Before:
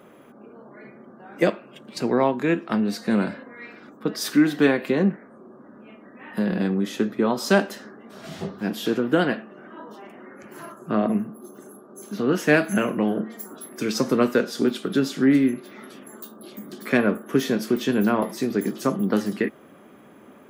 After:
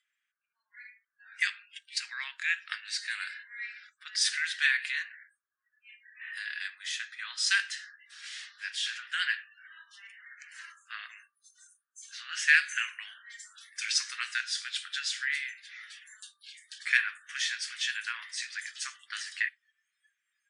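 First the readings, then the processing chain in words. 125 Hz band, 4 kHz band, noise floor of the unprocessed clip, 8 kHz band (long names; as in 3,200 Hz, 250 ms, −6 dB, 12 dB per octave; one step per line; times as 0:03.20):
below −40 dB, +2.5 dB, −49 dBFS, +1.5 dB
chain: Chebyshev low-pass filter 10,000 Hz, order 10
noise reduction from a noise print of the clip's start 23 dB
elliptic high-pass filter 1,700 Hz, stop band 70 dB
level +3.5 dB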